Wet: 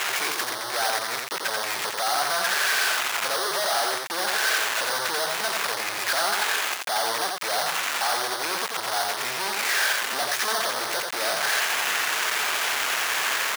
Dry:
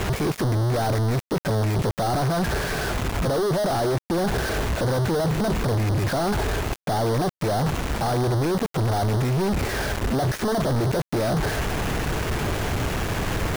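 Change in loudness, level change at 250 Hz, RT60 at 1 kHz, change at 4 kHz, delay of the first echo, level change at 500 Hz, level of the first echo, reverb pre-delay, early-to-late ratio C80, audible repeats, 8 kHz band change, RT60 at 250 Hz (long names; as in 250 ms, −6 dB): 0.0 dB, −18.5 dB, no reverb audible, +8.5 dB, 87 ms, −7.0 dB, −3.5 dB, no reverb audible, no reverb audible, 1, +8.5 dB, no reverb audible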